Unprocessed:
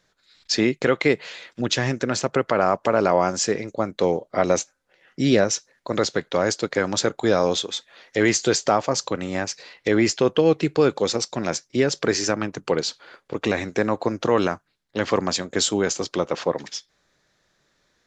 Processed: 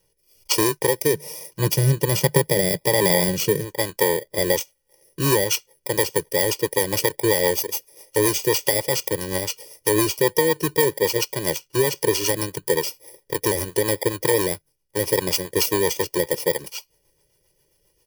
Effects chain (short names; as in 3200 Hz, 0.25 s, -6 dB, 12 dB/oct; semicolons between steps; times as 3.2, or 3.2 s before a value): FFT order left unsorted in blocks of 32 samples; rotary speaker horn 1.2 Hz, later 7.5 Hz, at 4.95; comb 2.1 ms, depth 96%; compressor, threshold -16 dBFS, peak gain reduction 6.5 dB; 1.13–3.65 bell 160 Hz +13 dB 0.84 oct; gain +2 dB